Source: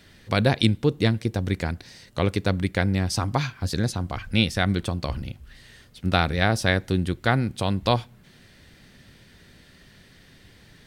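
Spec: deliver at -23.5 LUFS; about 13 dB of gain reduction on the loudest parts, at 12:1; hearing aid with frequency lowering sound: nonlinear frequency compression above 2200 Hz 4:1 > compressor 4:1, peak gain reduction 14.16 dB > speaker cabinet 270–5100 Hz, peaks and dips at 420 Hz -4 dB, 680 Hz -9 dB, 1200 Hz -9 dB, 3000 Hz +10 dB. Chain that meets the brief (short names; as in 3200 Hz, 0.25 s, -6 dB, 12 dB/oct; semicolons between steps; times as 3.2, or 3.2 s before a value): compressor 12:1, threshold -28 dBFS; nonlinear frequency compression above 2200 Hz 4:1; compressor 4:1, threshold -42 dBFS; speaker cabinet 270–5100 Hz, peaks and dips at 420 Hz -4 dB, 680 Hz -9 dB, 1200 Hz -9 dB, 3000 Hz +10 dB; gain +21 dB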